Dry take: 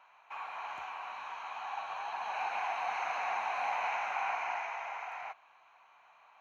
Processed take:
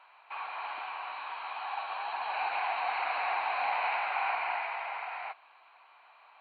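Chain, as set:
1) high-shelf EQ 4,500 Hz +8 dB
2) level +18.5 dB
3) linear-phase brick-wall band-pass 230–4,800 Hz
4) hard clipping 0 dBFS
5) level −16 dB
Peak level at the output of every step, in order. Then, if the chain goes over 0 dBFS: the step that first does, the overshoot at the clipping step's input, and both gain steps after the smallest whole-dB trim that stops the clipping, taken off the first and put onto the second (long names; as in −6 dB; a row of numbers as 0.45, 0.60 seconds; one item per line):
−22.0, −3.5, −3.5, −3.5, −19.5 dBFS
no step passes full scale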